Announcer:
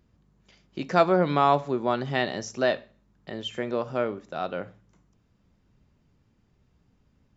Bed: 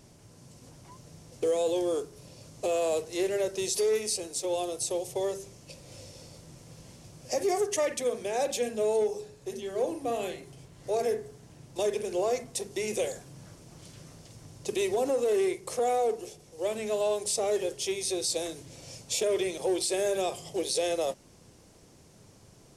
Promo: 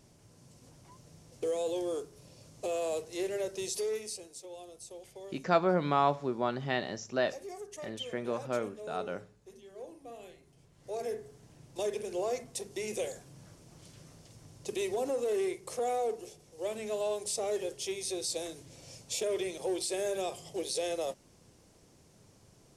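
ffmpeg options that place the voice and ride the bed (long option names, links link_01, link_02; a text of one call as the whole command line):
ffmpeg -i stem1.wav -i stem2.wav -filter_complex "[0:a]adelay=4550,volume=-6dB[link_01];[1:a]volume=6dB,afade=type=out:start_time=3.65:duration=0.84:silence=0.281838,afade=type=in:start_time=10.45:duration=0.98:silence=0.266073[link_02];[link_01][link_02]amix=inputs=2:normalize=0" out.wav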